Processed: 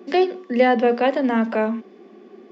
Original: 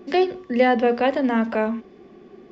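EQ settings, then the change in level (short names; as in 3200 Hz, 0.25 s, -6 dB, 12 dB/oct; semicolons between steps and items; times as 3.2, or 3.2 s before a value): elliptic high-pass 200 Hz; +1.5 dB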